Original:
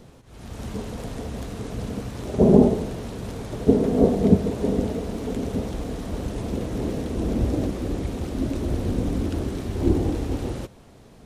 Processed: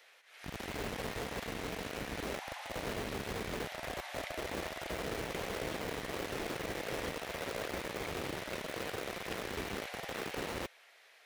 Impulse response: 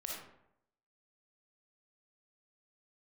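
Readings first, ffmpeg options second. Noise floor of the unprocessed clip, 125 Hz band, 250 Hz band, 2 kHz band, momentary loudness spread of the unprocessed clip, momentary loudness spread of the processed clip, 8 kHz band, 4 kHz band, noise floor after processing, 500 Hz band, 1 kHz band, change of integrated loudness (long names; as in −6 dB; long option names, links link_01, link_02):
−49 dBFS, −20.5 dB, −21.5 dB, +4.0 dB, 14 LU, 3 LU, −3.0 dB, +0.5 dB, −62 dBFS, −14.5 dB, −5.0 dB, −15.0 dB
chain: -filter_complex "[0:a]afftfilt=real='re*lt(hypot(re,im),0.2)':imag='im*lt(hypot(re,im),0.2)':win_size=1024:overlap=0.75,equalizer=frequency=125:width_type=o:width=1:gain=-6,equalizer=frequency=250:width_type=o:width=1:gain=-5,equalizer=frequency=1000:width_type=o:width=1:gain=-9,equalizer=frequency=2000:width_type=o:width=1:gain=9,equalizer=frequency=8000:width_type=o:width=1:gain=-7,acrossover=split=680|3400[link_01][link_02][link_03];[link_01]acrusher=bits=5:mix=0:aa=0.000001[link_04];[link_04][link_02][link_03]amix=inputs=3:normalize=0,highpass=frequency=58:poles=1,volume=-2dB"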